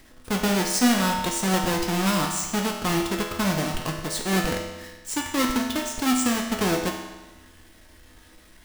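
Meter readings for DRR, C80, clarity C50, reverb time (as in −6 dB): 0.0 dB, 5.5 dB, 4.0 dB, 1.2 s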